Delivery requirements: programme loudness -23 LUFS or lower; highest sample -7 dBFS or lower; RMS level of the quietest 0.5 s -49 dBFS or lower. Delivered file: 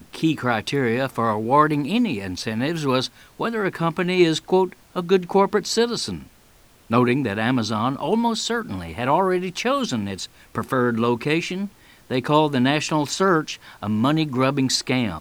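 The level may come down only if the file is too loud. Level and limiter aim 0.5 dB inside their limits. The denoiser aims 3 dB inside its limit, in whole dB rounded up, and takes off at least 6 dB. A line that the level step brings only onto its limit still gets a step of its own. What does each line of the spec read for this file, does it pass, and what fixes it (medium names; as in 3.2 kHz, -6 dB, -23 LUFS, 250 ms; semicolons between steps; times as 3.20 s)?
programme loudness -22.0 LUFS: fail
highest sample -2.5 dBFS: fail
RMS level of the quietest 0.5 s -53 dBFS: pass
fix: trim -1.5 dB; peak limiter -7.5 dBFS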